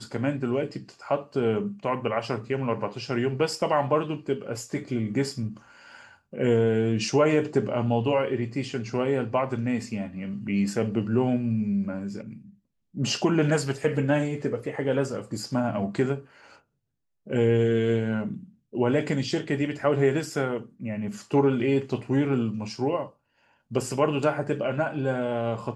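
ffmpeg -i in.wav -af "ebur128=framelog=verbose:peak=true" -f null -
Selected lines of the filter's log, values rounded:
Integrated loudness:
  I:         -26.6 LUFS
  Threshold: -37.0 LUFS
Loudness range:
  LRA:         3.1 LU
  Threshold: -47.0 LUFS
  LRA low:   -28.3 LUFS
  LRA high:  -25.3 LUFS
True peak:
  Peak:       -9.8 dBFS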